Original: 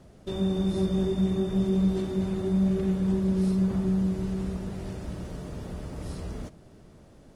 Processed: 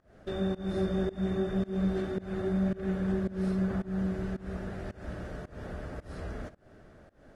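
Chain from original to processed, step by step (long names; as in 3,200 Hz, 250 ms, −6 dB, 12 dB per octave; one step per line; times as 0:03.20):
high-shelf EQ 5,100 Hz −9.5 dB
notch filter 960 Hz, Q 14
fake sidechain pumping 110 BPM, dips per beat 1, −23 dB, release 230 ms
graphic EQ with 15 bands 160 Hz −4 dB, 630 Hz +5 dB, 1,600 Hz +11 dB
level −2.5 dB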